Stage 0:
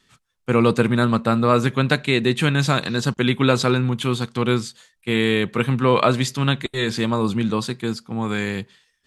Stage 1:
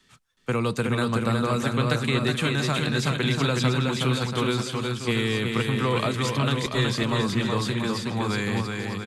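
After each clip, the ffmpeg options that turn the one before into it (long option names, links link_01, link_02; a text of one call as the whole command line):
ffmpeg -i in.wav -filter_complex "[0:a]acrossover=split=150|480|4300[link_01][link_02][link_03][link_04];[link_01]acompressor=threshold=-29dB:ratio=4[link_05];[link_02]acompressor=threshold=-32dB:ratio=4[link_06];[link_03]acompressor=threshold=-28dB:ratio=4[link_07];[link_04]acompressor=threshold=-36dB:ratio=4[link_08];[link_05][link_06][link_07][link_08]amix=inputs=4:normalize=0,asplit=2[link_09][link_10];[link_10]aecho=0:1:370|684.5|951.8|1179|1372:0.631|0.398|0.251|0.158|0.1[link_11];[link_09][link_11]amix=inputs=2:normalize=0" out.wav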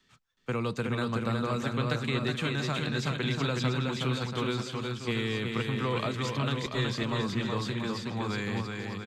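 ffmpeg -i in.wav -af "equalizer=frequency=10000:width_type=o:width=0.44:gain=-13,volume=-6dB" out.wav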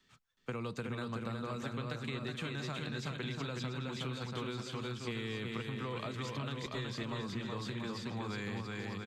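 ffmpeg -i in.wav -af "acompressor=threshold=-33dB:ratio=6,volume=-3dB" out.wav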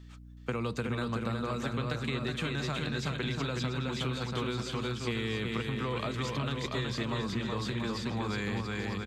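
ffmpeg -i in.wav -af "aeval=exprs='val(0)+0.002*(sin(2*PI*60*n/s)+sin(2*PI*2*60*n/s)/2+sin(2*PI*3*60*n/s)/3+sin(2*PI*4*60*n/s)/4+sin(2*PI*5*60*n/s)/5)':channel_layout=same,volume=6dB" out.wav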